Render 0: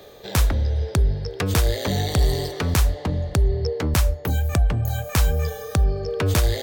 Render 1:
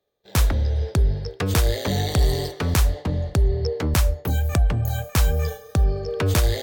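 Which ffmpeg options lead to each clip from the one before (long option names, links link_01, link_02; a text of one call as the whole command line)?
ffmpeg -i in.wav -af "agate=range=-33dB:threshold=-25dB:ratio=3:detection=peak" out.wav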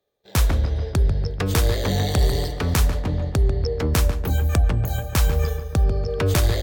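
ffmpeg -i in.wav -filter_complex "[0:a]asplit=2[link_01][link_02];[link_02]adelay=144,lowpass=frequency=2300:poles=1,volume=-8.5dB,asplit=2[link_03][link_04];[link_04]adelay=144,lowpass=frequency=2300:poles=1,volume=0.54,asplit=2[link_05][link_06];[link_06]adelay=144,lowpass=frequency=2300:poles=1,volume=0.54,asplit=2[link_07][link_08];[link_08]adelay=144,lowpass=frequency=2300:poles=1,volume=0.54,asplit=2[link_09][link_10];[link_10]adelay=144,lowpass=frequency=2300:poles=1,volume=0.54,asplit=2[link_11][link_12];[link_12]adelay=144,lowpass=frequency=2300:poles=1,volume=0.54[link_13];[link_01][link_03][link_05][link_07][link_09][link_11][link_13]amix=inputs=7:normalize=0" out.wav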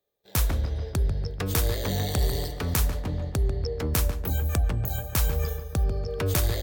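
ffmpeg -i in.wav -af "highshelf=frequency=9900:gain=11,volume=-6dB" out.wav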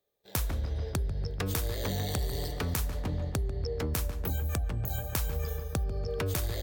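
ffmpeg -i in.wav -af "acompressor=threshold=-28dB:ratio=6" out.wav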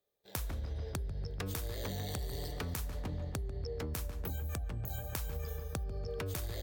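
ffmpeg -i in.wav -af "acompressor=threshold=-32dB:ratio=3,volume=-3.5dB" out.wav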